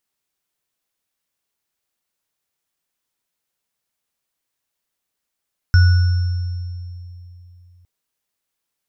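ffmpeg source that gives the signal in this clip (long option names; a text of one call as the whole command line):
ffmpeg -f lavfi -i "aevalsrc='0.473*pow(10,-3*t/3.04)*sin(2*PI*88.6*t)+0.106*pow(10,-3*t/1.19)*sin(2*PI*1470*t)+0.0531*pow(10,-3*t/2.3)*sin(2*PI*5400*t)':duration=2.11:sample_rate=44100" out.wav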